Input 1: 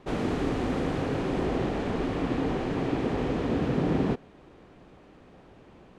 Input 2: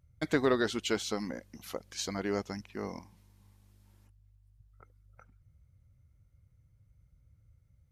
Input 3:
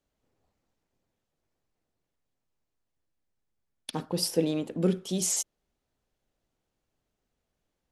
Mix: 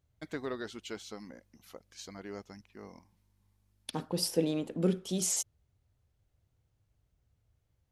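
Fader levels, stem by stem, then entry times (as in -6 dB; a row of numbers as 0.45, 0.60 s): off, -10.5 dB, -3.0 dB; off, 0.00 s, 0.00 s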